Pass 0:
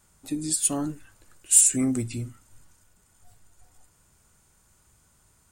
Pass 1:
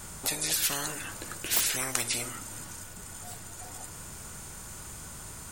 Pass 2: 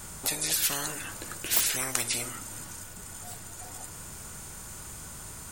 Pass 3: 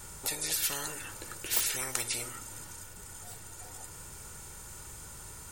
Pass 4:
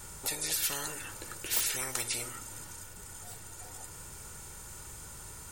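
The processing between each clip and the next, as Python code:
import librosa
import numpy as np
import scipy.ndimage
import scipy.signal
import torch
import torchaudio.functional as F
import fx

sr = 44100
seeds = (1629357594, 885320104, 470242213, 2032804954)

y1 = fx.spectral_comp(x, sr, ratio=10.0)
y2 = fx.high_shelf(y1, sr, hz=11000.0, db=3.0)
y3 = y2 + 0.35 * np.pad(y2, (int(2.2 * sr / 1000.0), 0))[:len(y2)]
y3 = y3 * 10.0 ** (-4.5 / 20.0)
y4 = 10.0 ** (-17.0 / 20.0) * np.tanh(y3 / 10.0 ** (-17.0 / 20.0))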